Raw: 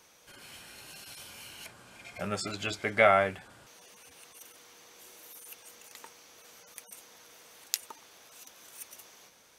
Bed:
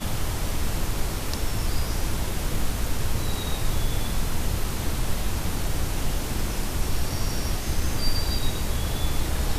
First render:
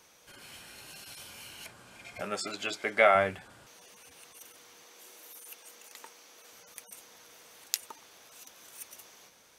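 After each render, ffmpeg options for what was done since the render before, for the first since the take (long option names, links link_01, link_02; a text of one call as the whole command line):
ffmpeg -i in.wav -filter_complex "[0:a]asettb=1/sr,asplit=3[link_01][link_02][link_03];[link_01]atrim=end=2.214[link_04];[link_02]atrim=start=2.21:end=3.15,asetpts=PTS-STARTPTS,afade=type=in:duration=0.004:curve=qsin,afade=type=out:start_time=0.936:duration=0.004:curve=qsin,highpass=270[link_05];[link_03]atrim=start=3.146[link_06];[link_04][link_05]acrossfade=duration=0.004:curve1=hsin:curve2=qsin[link_07];[link_07][link_06]acrossfade=duration=0.004:curve1=qsin:curve2=hsin,asettb=1/sr,asplit=3[link_08][link_09][link_10];[link_08]atrim=end=4.834[link_11];[link_09]atrim=start=4.83:end=6.53,asetpts=PTS-STARTPTS,afade=type=in:duration=0.004:curve=qsin,afade=type=out:start_time=1.696:duration=0.004:curve=qsin,highpass=220[link_12];[link_10]atrim=start=6.526[link_13];[link_11][link_12]acrossfade=duration=0.004:curve1=hsin:curve2=qsin[link_14];[link_14][link_13]acrossfade=duration=0.004:curve1=qsin:curve2=hsin" out.wav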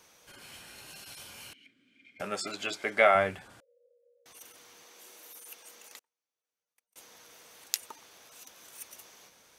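ffmpeg -i in.wav -filter_complex "[0:a]asettb=1/sr,asplit=3[link_01][link_02][link_03];[link_01]atrim=end=1.534[link_04];[link_02]atrim=start=1.53:end=2.2,asetpts=PTS-STARTPTS,afade=type=in:duration=0.004:curve=qsin,afade=type=out:start_time=0.666:duration=0.004:curve=qsin,asplit=3[link_05][link_06][link_07];[link_05]bandpass=frequency=270:width_type=q:width=8,volume=0dB[link_08];[link_06]bandpass=frequency=2290:width_type=q:width=8,volume=-6dB[link_09];[link_07]bandpass=frequency=3010:width_type=q:width=8,volume=-9dB[link_10];[link_08][link_09][link_10]amix=inputs=3:normalize=0[link_11];[link_03]atrim=start=2.196[link_12];[link_04][link_11]acrossfade=duration=0.004:curve1=hsin:curve2=qsin[link_13];[link_13][link_12]acrossfade=duration=0.004:curve1=qsin:curve2=hsin,asettb=1/sr,asplit=3[link_14][link_15][link_16];[link_14]atrim=end=3.604[link_17];[link_15]atrim=start=3.6:end=4.26,asetpts=PTS-STARTPTS,afade=type=in:duration=0.004:curve=qsin,afade=type=out:start_time=0.656:duration=0.004:curve=qsin,asuperpass=centerf=510:order=8:qfactor=5.1[link_18];[link_16]atrim=start=4.256[link_19];[link_17][link_18]acrossfade=duration=0.004:curve1=hsin:curve2=qsin[link_20];[link_20][link_19]acrossfade=duration=0.004:curve1=qsin:curve2=hsin,asettb=1/sr,asplit=3[link_21][link_22][link_23];[link_21]atrim=end=5.994[link_24];[link_22]atrim=start=5.99:end=6.96,asetpts=PTS-STARTPTS,afade=type=in:duration=0.004:curve=qsin,afade=type=out:start_time=0.966:duration=0.004:curve=qsin,agate=range=-39dB:threshold=-42dB:ratio=16:release=100:detection=peak[link_25];[link_23]atrim=start=6.956[link_26];[link_24][link_25]acrossfade=duration=0.004:curve1=hsin:curve2=qsin[link_27];[link_27][link_26]acrossfade=duration=0.004:curve1=qsin:curve2=hsin" out.wav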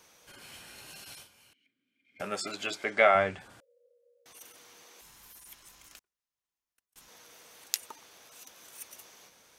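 ffmpeg -i in.wav -filter_complex "[0:a]asettb=1/sr,asplit=3[link_01][link_02][link_03];[link_01]atrim=end=2.844[link_04];[link_02]atrim=start=2.84:end=3.4,asetpts=PTS-STARTPTS,afade=type=in:duration=0.004:curve=qsin,afade=type=out:start_time=0.556:duration=0.004:curve=qsin,lowpass=frequency=8100:width=0.5412,lowpass=frequency=8100:width=1.3066[link_05];[link_03]atrim=start=3.396[link_06];[link_04][link_05]acrossfade=duration=0.004:curve1=hsin:curve2=qsin[link_07];[link_07][link_06]acrossfade=duration=0.004:curve1=qsin:curve2=hsin,asettb=1/sr,asplit=3[link_08][link_09][link_10];[link_08]atrim=end=5.014[link_11];[link_09]atrim=start=5.01:end=7.08,asetpts=PTS-STARTPTS,afade=type=in:duration=0.004:curve=qsin,afade=type=out:start_time=2.066:duration=0.004:curve=qsin,aeval=exprs='val(0)*sin(2*PI*530*n/s)':channel_layout=same[link_12];[link_10]atrim=start=7.076[link_13];[link_11][link_12]acrossfade=duration=0.004:curve1=hsin:curve2=qsin[link_14];[link_14][link_13]acrossfade=duration=0.004:curve1=qsin:curve2=hsin,asplit=3[link_15][link_16][link_17];[link_15]atrim=end=1.29,asetpts=PTS-STARTPTS,afade=type=out:start_time=1.15:duration=0.14:silence=0.199526[link_18];[link_16]atrim=start=1.29:end=2.07,asetpts=PTS-STARTPTS,volume=-14dB[link_19];[link_17]atrim=start=2.07,asetpts=PTS-STARTPTS,afade=type=in:duration=0.14:silence=0.199526[link_20];[link_18][link_19][link_20]concat=n=3:v=0:a=1" out.wav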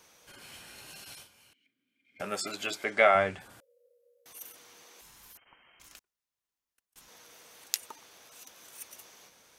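ffmpeg -i in.wav -filter_complex "[0:a]asettb=1/sr,asplit=3[link_01][link_02][link_03];[link_01]atrim=end=2.284[link_04];[link_02]atrim=start=2.28:end=4.55,asetpts=PTS-STARTPTS,afade=type=in:duration=0.004:curve=qsin,afade=type=out:start_time=2.266:duration=0.004:curve=qsin,equalizer=frequency=13000:width=1.1:gain=9.5[link_05];[link_03]atrim=start=4.546[link_06];[link_04][link_05]acrossfade=duration=0.004:curve1=hsin:curve2=qsin[link_07];[link_07][link_06]acrossfade=duration=0.004:curve1=qsin:curve2=hsin,asettb=1/sr,asplit=3[link_08][link_09][link_10];[link_08]atrim=end=5.374[link_11];[link_09]atrim=start=5.37:end=5.8,asetpts=PTS-STARTPTS,afade=type=in:duration=0.004:curve=qsin,afade=type=out:start_time=0.426:duration=0.004:curve=qsin,lowpass=frequency=2700:width_type=q:width=0.5098,lowpass=frequency=2700:width_type=q:width=0.6013,lowpass=frequency=2700:width_type=q:width=0.9,lowpass=frequency=2700:width_type=q:width=2.563,afreqshift=-3200[link_12];[link_10]atrim=start=5.796[link_13];[link_11][link_12]acrossfade=duration=0.004:curve1=hsin:curve2=qsin[link_14];[link_14][link_13]acrossfade=duration=0.004:curve1=qsin:curve2=hsin" out.wav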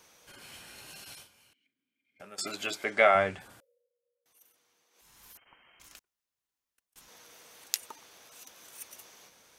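ffmpeg -i in.wav -filter_complex "[0:a]asplit=4[link_01][link_02][link_03][link_04];[link_01]atrim=end=2.38,asetpts=PTS-STARTPTS,afade=type=out:start_time=1.08:duration=1.3:silence=0.149624[link_05];[link_02]atrim=start=2.38:end=3.89,asetpts=PTS-STARTPTS,afade=type=in:duration=0.004:curve=hsin:silence=0.149624,afade=type=out:start_time=1.12:duration=0.39:silence=0.141254[link_06];[link_03]atrim=start=3.89:end=4.91,asetpts=PTS-STARTPTS,volume=-17dB[link_07];[link_04]atrim=start=4.91,asetpts=PTS-STARTPTS,afade=type=in:duration=0.39:silence=0.141254[link_08];[link_05][link_06][link_07][link_08]concat=n=4:v=0:a=1" out.wav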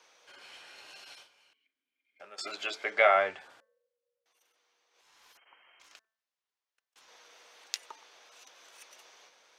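ffmpeg -i in.wav -filter_complex "[0:a]acrossover=split=370 6200:gain=0.0891 1 0.1[link_01][link_02][link_03];[link_01][link_02][link_03]amix=inputs=3:normalize=0,bandreject=frequency=221.2:width_type=h:width=4,bandreject=frequency=442.4:width_type=h:width=4,bandreject=frequency=663.6:width_type=h:width=4,bandreject=frequency=884.8:width_type=h:width=4,bandreject=frequency=1106:width_type=h:width=4,bandreject=frequency=1327.2:width_type=h:width=4,bandreject=frequency=1548.4:width_type=h:width=4,bandreject=frequency=1769.6:width_type=h:width=4,bandreject=frequency=1990.8:width_type=h:width=4" out.wav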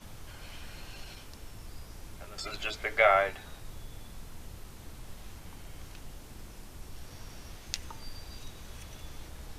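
ffmpeg -i in.wav -i bed.wav -filter_complex "[1:a]volume=-20dB[link_01];[0:a][link_01]amix=inputs=2:normalize=0" out.wav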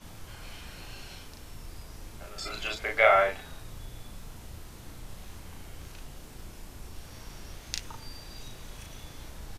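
ffmpeg -i in.wav -filter_complex "[0:a]asplit=2[link_01][link_02];[link_02]adelay=36,volume=-2.5dB[link_03];[link_01][link_03]amix=inputs=2:normalize=0" out.wav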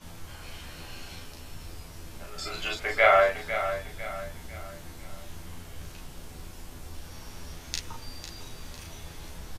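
ffmpeg -i in.wav -filter_complex "[0:a]asplit=2[link_01][link_02];[link_02]adelay=12,volume=-3.5dB[link_03];[link_01][link_03]amix=inputs=2:normalize=0,aecho=1:1:501|1002|1503|2004:0.299|0.122|0.0502|0.0206" out.wav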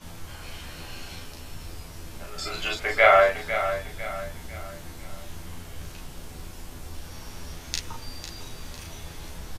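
ffmpeg -i in.wav -af "volume=3dB" out.wav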